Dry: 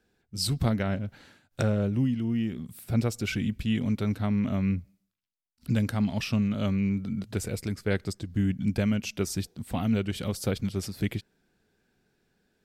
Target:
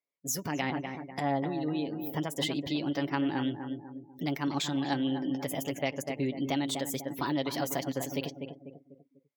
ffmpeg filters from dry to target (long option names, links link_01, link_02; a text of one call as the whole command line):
ffmpeg -i in.wav -filter_complex "[0:a]highshelf=frequency=6900:gain=6.5,asplit=2[link_01][link_02];[link_02]adelay=333,lowpass=frequency=1600:poles=1,volume=-9dB,asplit=2[link_03][link_04];[link_04]adelay=333,lowpass=frequency=1600:poles=1,volume=0.46,asplit=2[link_05][link_06];[link_06]adelay=333,lowpass=frequency=1600:poles=1,volume=0.46,asplit=2[link_07][link_08];[link_08]adelay=333,lowpass=frequency=1600:poles=1,volume=0.46,asplit=2[link_09][link_10];[link_10]adelay=333,lowpass=frequency=1600:poles=1,volume=0.46[link_11];[link_01][link_03][link_05][link_07][link_09][link_11]amix=inputs=6:normalize=0,alimiter=limit=-21dB:level=0:latency=1:release=211,asetrate=59535,aresample=44100,highpass=frequency=760:poles=1,equalizer=frequency=9900:width=0.43:gain=-8,aecho=1:1:7.1:0.37,afftdn=noise_reduction=26:noise_floor=-56,volume=5.5dB" out.wav